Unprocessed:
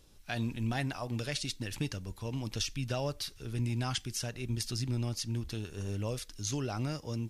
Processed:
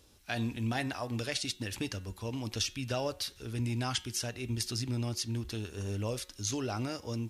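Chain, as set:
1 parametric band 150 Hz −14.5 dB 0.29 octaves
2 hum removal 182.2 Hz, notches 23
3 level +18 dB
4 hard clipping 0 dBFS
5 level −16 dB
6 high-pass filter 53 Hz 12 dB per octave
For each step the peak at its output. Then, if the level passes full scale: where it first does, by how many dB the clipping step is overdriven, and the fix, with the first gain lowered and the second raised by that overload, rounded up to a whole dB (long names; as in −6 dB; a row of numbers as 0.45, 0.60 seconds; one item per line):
−20.0, −20.5, −2.5, −2.5, −18.5, −18.0 dBFS
no step passes full scale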